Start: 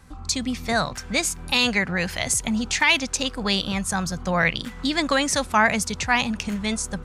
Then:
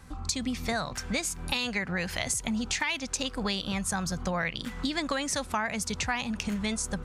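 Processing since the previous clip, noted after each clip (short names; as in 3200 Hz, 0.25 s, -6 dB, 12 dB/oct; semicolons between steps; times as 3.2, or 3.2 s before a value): compressor 6:1, threshold -27 dBFS, peak gain reduction 13.5 dB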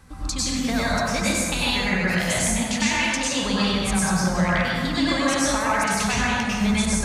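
plate-style reverb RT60 1.8 s, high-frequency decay 0.5×, pre-delay 85 ms, DRR -8.5 dB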